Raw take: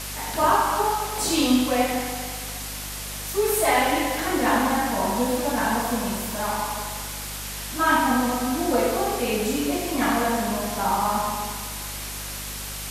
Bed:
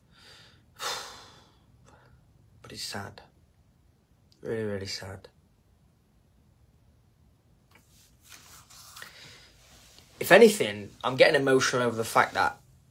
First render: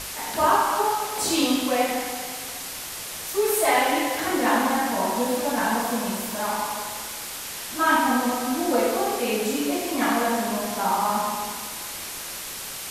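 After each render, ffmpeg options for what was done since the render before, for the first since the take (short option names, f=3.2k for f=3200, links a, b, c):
-af "bandreject=f=50:t=h:w=6,bandreject=f=100:t=h:w=6,bandreject=f=150:t=h:w=6,bandreject=f=200:t=h:w=6,bandreject=f=250:t=h:w=6,bandreject=f=300:t=h:w=6"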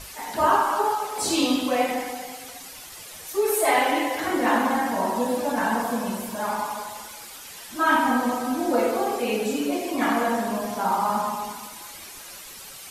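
-af "afftdn=nr=10:nf=-35"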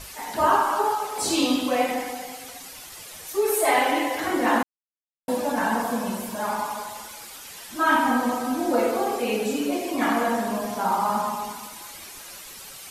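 -filter_complex "[0:a]asplit=3[a][b][c];[a]atrim=end=4.63,asetpts=PTS-STARTPTS,afade=t=out:st=4.626:d=0.004:c=hsin[d];[b]atrim=start=4.63:end=5.28,asetpts=PTS-STARTPTS,volume=0[e];[c]atrim=start=5.28,asetpts=PTS-STARTPTS,afade=t=in:d=0.004:c=hsin[f];[d][e][f]concat=n=3:v=0:a=1"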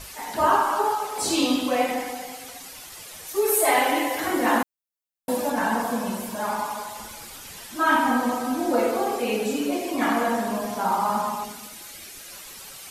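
-filter_complex "[0:a]asettb=1/sr,asplit=3[a][b][c];[a]atrim=end=3.364[d];[b]atrim=start=3.36:end=5.5,asetpts=PTS-STARTPTS,afade=t=in:d=0.004:c=qsin,afade=t=out:st=2.136:d=0.004:c=qsin,highshelf=f=9.5k:g=8[e];[c]atrim=start=5.496[f];[d][e]acrossfade=d=0.004:c1=hsin:c2=qsin[g];[g][f]acrossfade=d=0.004:c1=qsin:c2=hsin,asettb=1/sr,asplit=3[h][i][j];[h]atrim=end=6.994[k];[i]atrim=start=6.99:end=7.67,asetpts=PTS-STARTPTS,afade=t=in:d=0.004:c=qsin,afade=t=out:st=0.676:d=0.004:c=qsin,lowshelf=f=230:g=11[l];[j]atrim=start=7.666[m];[k][l]acrossfade=d=0.004:c1=hsin:c2=qsin[n];[n][m]acrossfade=d=0.004:c1=qsin:c2=hsin,asettb=1/sr,asplit=3[o][p][q];[o]atrim=end=11.444[r];[p]atrim=start=11.44:end=12.32,asetpts=PTS-STARTPTS,afade=t=in:d=0.004:c=qsin,afade=t=out:st=0.876:d=0.004:c=qsin,equalizer=f=970:t=o:w=0.57:g=-10.5[s];[q]atrim=start=12.316[t];[r][s]acrossfade=d=0.004:c1=hsin:c2=qsin[u];[u][t]acrossfade=d=0.004:c1=qsin:c2=hsin"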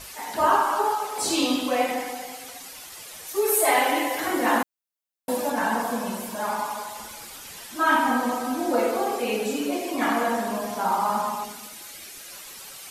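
-af "lowshelf=f=170:g=-6.5"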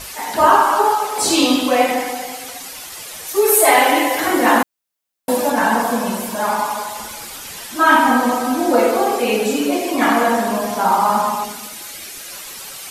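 -af "volume=8.5dB,alimiter=limit=-1dB:level=0:latency=1"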